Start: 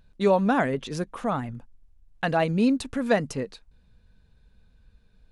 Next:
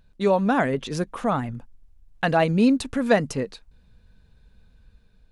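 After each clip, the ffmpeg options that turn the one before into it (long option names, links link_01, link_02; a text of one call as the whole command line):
ffmpeg -i in.wav -af "dynaudnorm=framelen=250:gausssize=5:maxgain=3.5dB" out.wav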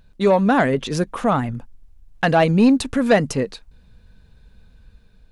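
ffmpeg -i in.wav -af "asoftclip=type=tanh:threshold=-11dB,volume=5.5dB" out.wav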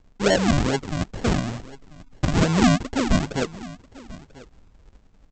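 ffmpeg -i in.wav -af "tremolo=f=260:d=0.333,aresample=16000,acrusher=samples=25:mix=1:aa=0.000001:lfo=1:lforange=25:lforate=2.3,aresample=44100,aecho=1:1:990:0.1,volume=-2dB" out.wav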